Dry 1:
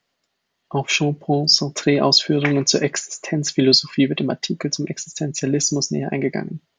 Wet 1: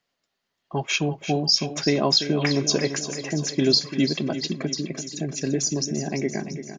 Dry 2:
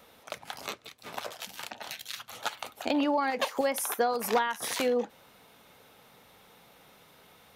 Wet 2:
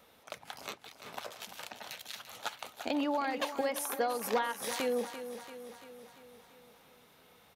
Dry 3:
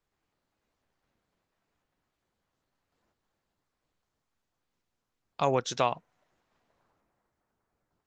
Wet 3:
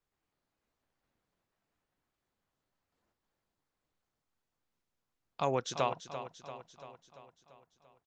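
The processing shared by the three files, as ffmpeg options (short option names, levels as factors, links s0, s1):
-af "aecho=1:1:341|682|1023|1364|1705|2046|2387:0.282|0.163|0.0948|0.055|0.0319|0.0185|0.0107,volume=0.562"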